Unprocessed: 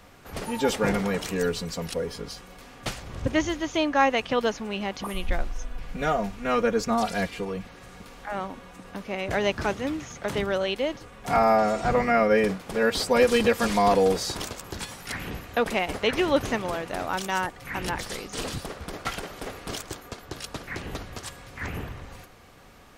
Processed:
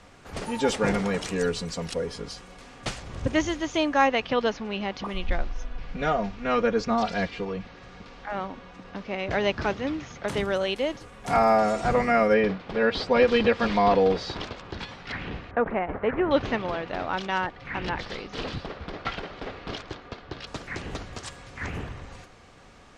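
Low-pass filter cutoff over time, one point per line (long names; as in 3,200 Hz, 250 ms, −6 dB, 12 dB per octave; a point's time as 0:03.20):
low-pass filter 24 dB per octave
9,200 Hz
from 0:04.07 5,400 Hz
from 0:10.28 11,000 Hz
from 0:12.34 4,300 Hz
from 0:15.51 1,800 Hz
from 0:16.31 4,400 Hz
from 0:20.47 8,300 Hz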